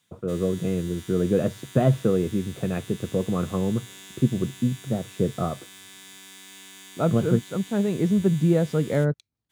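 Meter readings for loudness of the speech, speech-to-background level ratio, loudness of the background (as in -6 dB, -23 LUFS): -25.0 LUFS, 18.5 dB, -43.5 LUFS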